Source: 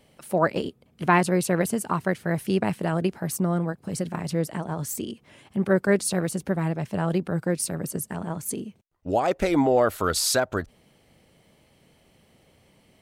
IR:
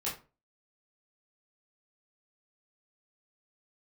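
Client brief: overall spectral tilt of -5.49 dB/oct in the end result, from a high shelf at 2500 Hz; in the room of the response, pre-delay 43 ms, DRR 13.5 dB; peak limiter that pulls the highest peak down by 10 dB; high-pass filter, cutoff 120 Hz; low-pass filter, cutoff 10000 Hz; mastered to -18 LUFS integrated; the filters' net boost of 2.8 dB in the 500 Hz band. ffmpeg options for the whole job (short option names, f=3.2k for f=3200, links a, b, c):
-filter_complex "[0:a]highpass=120,lowpass=10k,equalizer=f=500:t=o:g=4,highshelf=f=2.5k:g=-8.5,alimiter=limit=-14dB:level=0:latency=1,asplit=2[a][b];[1:a]atrim=start_sample=2205,adelay=43[c];[b][c]afir=irnorm=-1:irlink=0,volume=-17.5dB[d];[a][d]amix=inputs=2:normalize=0,volume=9dB"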